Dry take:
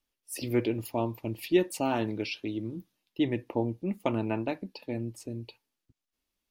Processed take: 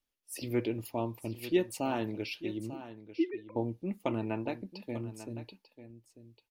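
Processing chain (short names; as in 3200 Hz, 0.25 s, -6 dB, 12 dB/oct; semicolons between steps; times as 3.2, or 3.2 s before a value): 2.75–3.56 sine-wave speech; echo 0.894 s -13.5 dB; gain -4 dB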